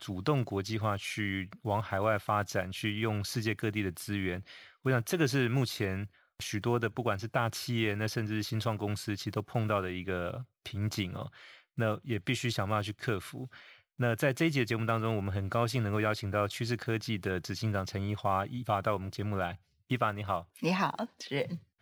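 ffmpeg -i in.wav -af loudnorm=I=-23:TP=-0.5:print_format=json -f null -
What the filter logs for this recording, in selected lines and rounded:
"input_i" : "-33.0",
"input_tp" : "-13.8",
"input_lra" : "2.8",
"input_thresh" : "-43.2",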